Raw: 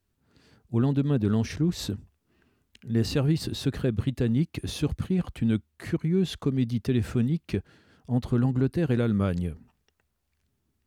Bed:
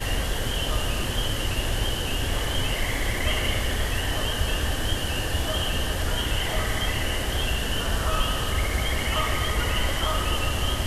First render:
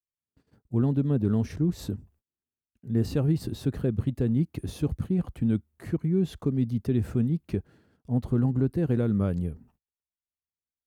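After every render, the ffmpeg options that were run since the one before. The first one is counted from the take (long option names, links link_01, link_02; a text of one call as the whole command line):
ffmpeg -i in.wav -af "equalizer=frequency=3600:width=0.37:gain=-10.5,agate=range=-33dB:threshold=-59dB:ratio=16:detection=peak" out.wav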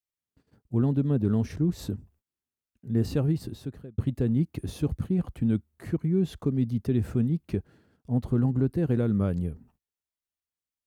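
ffmpeg -i in.wav -filter_complex "[0:a]asplit=2[link_01][link_02];[link_01]atrim=end=3.98,asetpts=PTS-STARTPTS,afade=type=out:start_time=3.19:duration=0.79[link_03];[link_02]atrim=start=3.98,asetpts=PTS-STARTPTS,afade=type=in:duration=0.004:curve=hsin[link_04];[link_03][link_04]concat=n=2:v=0:a=1" out.wav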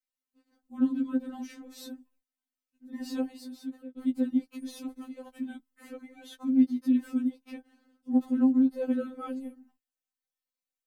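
ffmpeg -i in.wav -af "afftfilt=real='re*3.46*eq(mod(b,12),0)':imag='im*3.46*eq(mod(b,12),0)':win_size=2048:overlap=0.75" out.wav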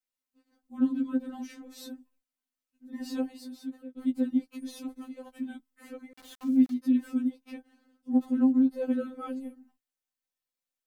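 ffmpeg -i in.wav -filter_complex "[0:a]asettb=1/sr,asplit=3[link_01][link_02][link_03];[link_01]atrim=end=6.134[link_04];[link_02]atrim=start=6.13:end=6.74,asetpts=PTS-STARTPTS,afade=type=in:duration=0.004:curve=qsin,afade=type=out:start_time=0.606:duration=0.004:curve=qsin,aeval=exprs='val(0)*gte(abs(val(0)),0.00501)':channel_layout=same[link_05];[link_03]atrim=start=6.736[link_06];[link_04][link_05]acrossfade=duration=0.004:curve1=hsin:curve2=qsin[link_07];[link_07][link_06]acrossfade=duration=0.004:curve1=qsin:curve2=hsin" out.wav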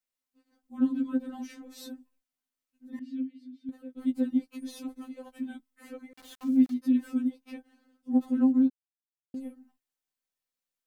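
ffmpeg -i in.wav -filter_complex "[0:a]asettb=1/sr,asplit=3[link_01][link_02][link_03];[link_01]atrim=end=2.994[link_04];[link_02]atrim=start=2.99:end=3.69,asetpts=PTS-STARTPTS,afade=type=in:duration=0.004:curve=qsin,afade=type=out:start_time=0.696:duration=0.004:curve=qsin,asplit=3[link_05][link_06][link_07];[link_05]bandpass=frequency=270:width_type=q:width=8,volume=0dB[link_08];[link_06]bandpass=frequency=2290:width_type=q:width=8,volume=-6dB[link_09];[link_07]bandpass=frequency=3010:width_type=q:width=8,volume=-9dB[link_10];[link_08][link_09][link_10]amix=inputs=3:normalize=0[link_11];[link_03]atrim=start=3.686[link_12];[link_04][link_11]acrossfade=duration=0.004:curve1=hsin:curve2=qsin[link_13];[link_13][link_12]acrossfade=duration=0.004:curve1=qsin:curve2=hsin,asplit=3[link_14][link_15][link_16];[link_14]atrim=end=8.7,asetpts=PTS-STARTPTS,afade=type=out:start_time=8.696:duration=0.004:curve=hsin[link_17];[link_15]atrim=start=8.7:end=9.34,asetpts=PTS-STARTPTS,volume=0[link_18];[link_16]atrim=start=9.34,asetpts=PTS-STARTPTS,afade=type=in:duration=0.004:curve=hsin[link_19];[link_17][link_18][link_19]concat=n=3:v=0:a=1" out.wav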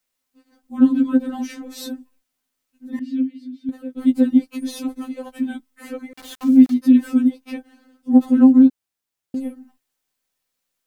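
ffmpeg -i in.wav -af "volume=12dB,alimiter=limit=-2dB:level=0:latency=1" out.wav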